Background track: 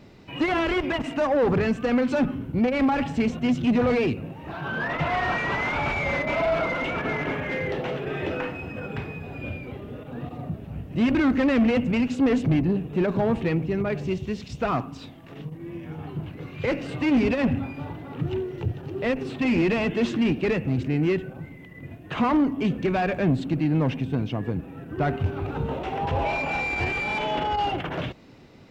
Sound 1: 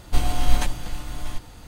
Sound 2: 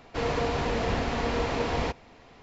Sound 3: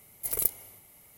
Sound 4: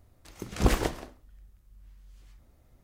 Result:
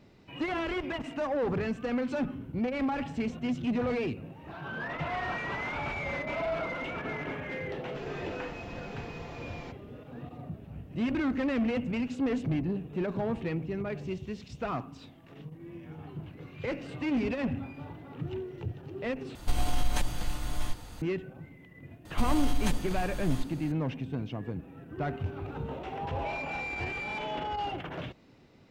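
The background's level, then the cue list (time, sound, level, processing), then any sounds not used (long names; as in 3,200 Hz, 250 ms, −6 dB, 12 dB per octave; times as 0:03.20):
background track −8.5 dB
0:07.80: mix in 2 −17.5 dB + comb filter 5.8 ms
0:19.35: overwrite with 1 −1.5 dB + downward compressor 4 to 1, threshold −19 dBFS
0:22.05: mix in 1 −4.5 dB + downward compressor, threshold −16 dBFS
not used: 3, 4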